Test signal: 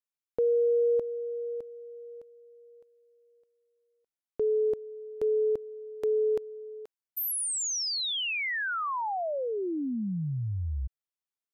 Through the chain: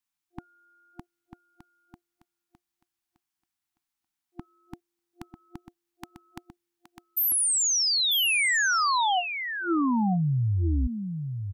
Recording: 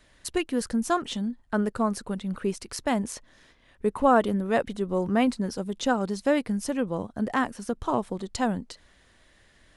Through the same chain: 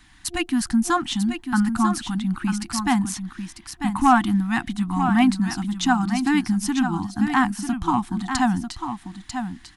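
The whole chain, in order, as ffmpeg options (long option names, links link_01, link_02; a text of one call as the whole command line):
ffmpeg -i in.wav -af "acontrast=74,aecho=1:1:945:0.398,afftfilt=real='re*(1-between(b*sr/4096,350,700))':imag='im*(1-between(b*sr/4096,350,700))':win_size=4096:overlap=0.75" out.wav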